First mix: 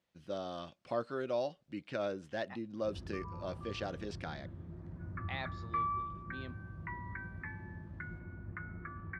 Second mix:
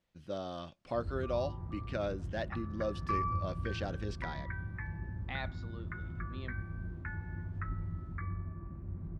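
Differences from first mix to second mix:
first sound: entry -1.90 s; second sound: entry -2.65 s; master: remove high-pass 160 Hz 6 dB/octave

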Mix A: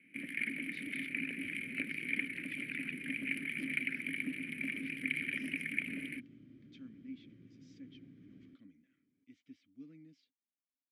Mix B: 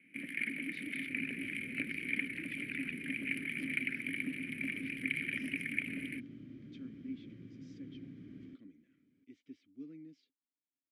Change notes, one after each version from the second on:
speech: add peaking EQ 380 Hz +13 dB 0.53 oct; second sound +7.0 dB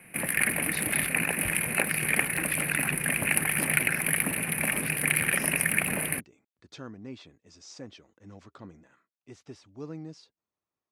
second sound: muted; master: remove vowel filter i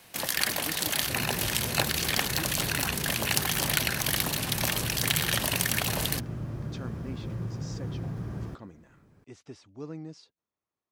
first sound: remove FFT filter 110 Hz 0 dB, 170 Hz +9 dB, 1 kHz -5 dB, 2.4 kHz +9 dB, 3.4 kHz -17 dB, 6.7 kHz -23 dB, 10 kHz +9 dB, 16 kHz -16 dB; second sound: unmuted

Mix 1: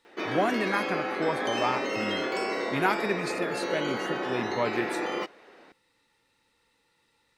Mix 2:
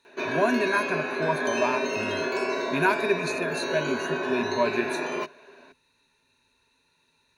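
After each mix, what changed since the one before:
master: add rippled EQ curve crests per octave 1.5, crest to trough 14 dB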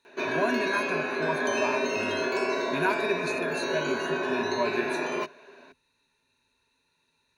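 speech -4.5 dB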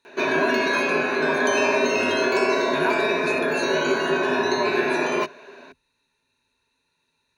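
background +7.0 dB

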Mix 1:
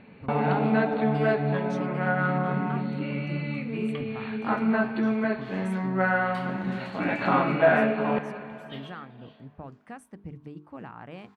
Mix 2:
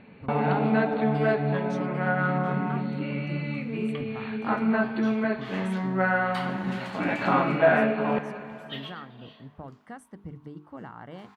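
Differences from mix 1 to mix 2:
speech: add Butterworth band-stop 2.5 kHz, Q 5.2; second sound +7.5 dB

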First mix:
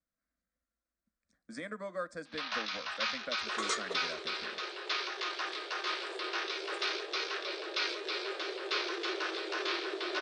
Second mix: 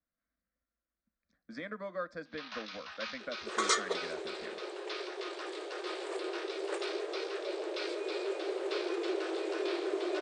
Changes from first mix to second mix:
speech: add low-pass 4.9 kHz 24 dB/octave; first sound -8.0 dB; second sound +5.5 dB

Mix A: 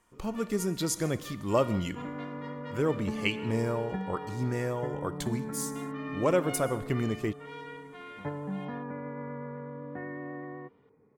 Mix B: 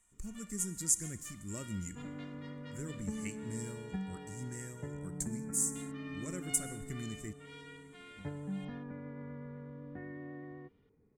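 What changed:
speech: add FFT filter 210 Hz 0 dB, 810 Hz -18 dB, 1.9 kHz -5 dB, 3.3 kHz -27 dB, 7.7 kHz +9 dB, 14 kHz -7 dB; second sound: add tilt EQ -2.5 dB/octave; master: add ten-band graphic EQ 125 Hz -10 dB, 250 Hz -6 dB, 500 Hz -9 dB, 1 kHz -12 dB, 2 kHz -3 dB

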